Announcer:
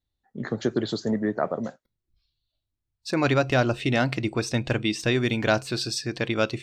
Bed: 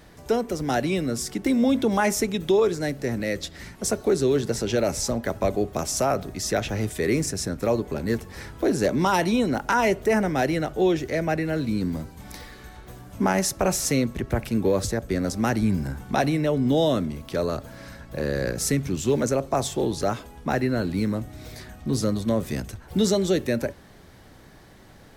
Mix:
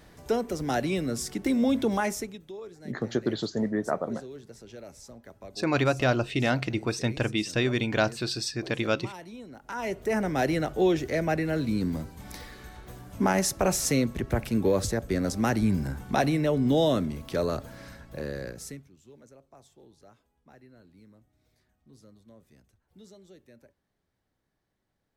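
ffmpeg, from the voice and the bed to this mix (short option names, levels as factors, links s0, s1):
-filter_complex "[0:a]adelay=2500,volume=0.75[s0];[1:a]volume=6.31,afade=t=out:st=1.89:d=0.53:silence=0.125893,afade=t=in:st=9.6:d=0.89:silence=0.105925,afade=t=out:st=17.6:d=1.29:silence=0.0375837[s1];[s0][s1]amix=inputs=2:normalize=0"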